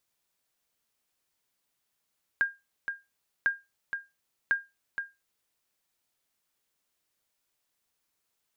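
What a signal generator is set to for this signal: sonar ping 1610 Hz, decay 0.22 s, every 1.05 s, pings 3, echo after 0.47 s, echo -8 dB -17 dBFS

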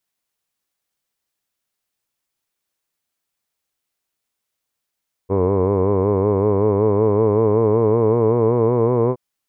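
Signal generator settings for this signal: formant-synthesis vowel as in hood, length 3.87 s, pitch 93.7 Hz, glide +4.5 st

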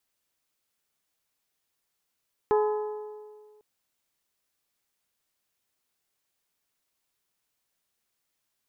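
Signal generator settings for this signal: metal hit bell, length 1.10 s, lowest mode 424 Hz, modes 5, decay 1.81 s, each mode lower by 6 dB, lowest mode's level -19 dB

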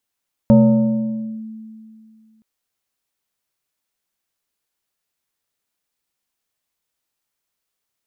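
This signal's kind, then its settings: FM tone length 1.92 s, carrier 220 Hz, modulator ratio 1.58, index 0.82, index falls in 0.93 s linear, decay 2.42 s, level -5.5 dB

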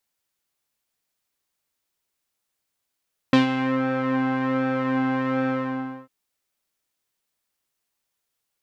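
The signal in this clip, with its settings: synth patch with pulse-width modulation C4, sub -12 dB, filter lowpass, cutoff 1300 Hz, Q 1.4, filter envelope 1.5 oct, filter decay 0.43 s, filter sustain 25%, attack 1.9 ms, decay 0.13 s, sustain -9 dB, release 0.60 s, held 2.15 s, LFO 1.3 Hz, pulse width 35%, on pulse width 9%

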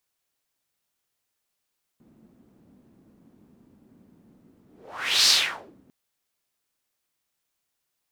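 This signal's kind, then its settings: whoosh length 3.90 s, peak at 3.28, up 0.63 s, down 0.54 s, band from 230 Hz, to 4700 Hz, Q 2.9, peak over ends 39 dB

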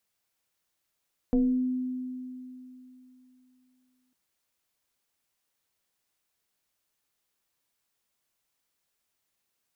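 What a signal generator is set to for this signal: FM tone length 2.80 s, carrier 254 Hz, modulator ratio 0.91, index 0.89, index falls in 0.56 s exponential, decay 3.15 s, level -19 dB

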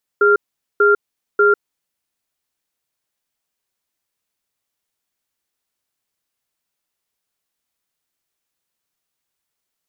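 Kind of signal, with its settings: cadence 411 Hz, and 1390 Hz, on 0.15 s, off 0.44 s, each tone -12 dBFS 1.51 s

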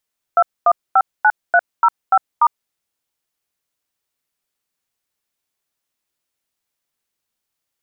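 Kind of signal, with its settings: DTMF "2159305*", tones 55 ms, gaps 0.237 s, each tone -11 dBFS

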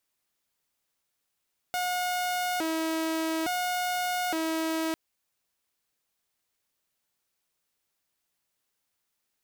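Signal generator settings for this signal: siren hi-lo 322–722 Hz 0.58/s saw -24.5 dBFS 3.20 s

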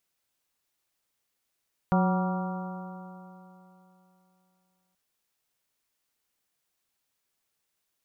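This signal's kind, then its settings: stretched partials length 3.03 s, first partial 182 Hz, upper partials -13.5/-9.5/-7.5/-9/-13/-14.5 dB, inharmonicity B 0.0039, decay 3.13 s, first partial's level -20.5 dB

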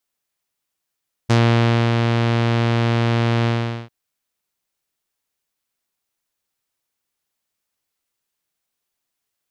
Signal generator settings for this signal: synth note saw A#2 12 dB/oct, low-pass 3600 Hz, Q 1.2, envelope 1 oct, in 0.11 s, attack 17 ms, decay 0.62 s, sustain -4 dB, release 0.43 s, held 2.17 s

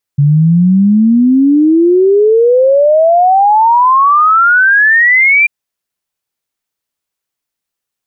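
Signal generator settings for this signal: log sweep 140 Hz -> 2400 Hz 5.29 s -4.5 dBFS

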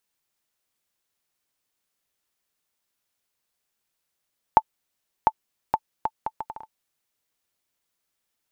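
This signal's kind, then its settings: bouncing ball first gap 0.70 s, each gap 0.67, 879 Hz, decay 51 ms -2 dBFS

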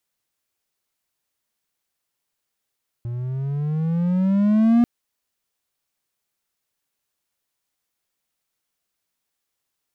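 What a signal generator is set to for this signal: gliding synth tone triangle, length 1.79 s, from 117 Hz, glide +12.5 st, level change +14 dB, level -9.5 dB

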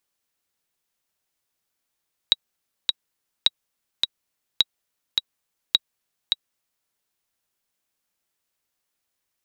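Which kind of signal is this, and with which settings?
metronome 105 bpm, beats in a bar 2, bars 4, 3840 Hz, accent 4 dB -2.5 dBFS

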